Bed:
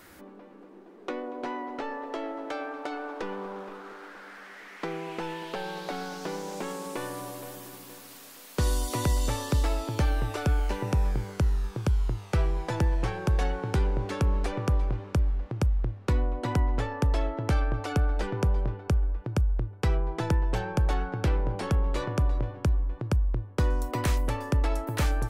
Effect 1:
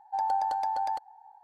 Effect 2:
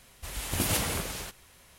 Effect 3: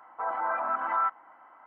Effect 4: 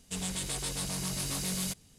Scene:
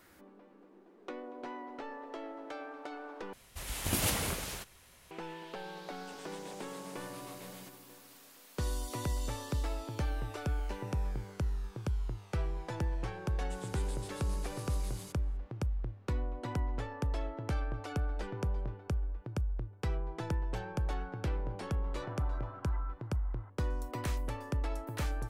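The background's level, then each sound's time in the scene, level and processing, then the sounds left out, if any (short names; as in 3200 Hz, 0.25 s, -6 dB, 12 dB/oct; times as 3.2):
bed -9 dB
3.33 replace with 2 -3 dB
5.96 add 4 -10 dB + three-band isolator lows -21 dB, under 190 Hz, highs -13 dB, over 2900 Hz
13.39 add 4 -15.5 dB
21.84 add 3 -6.5 dB + compressor, threshold -41 dBFS
not used: 1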